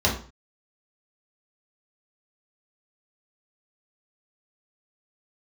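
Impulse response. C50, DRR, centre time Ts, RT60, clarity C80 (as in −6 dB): 7.5 dB, −3.5 dB, 25 ms, 0.40 s, 12.5 dB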